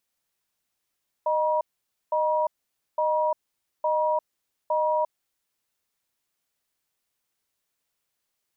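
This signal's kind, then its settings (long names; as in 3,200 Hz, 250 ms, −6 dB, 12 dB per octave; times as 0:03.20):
tone pair in a cadence 617 Hz, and 958 Hz, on 0.35 s, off 0.51 s, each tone −23.5 dBFS 3.89 s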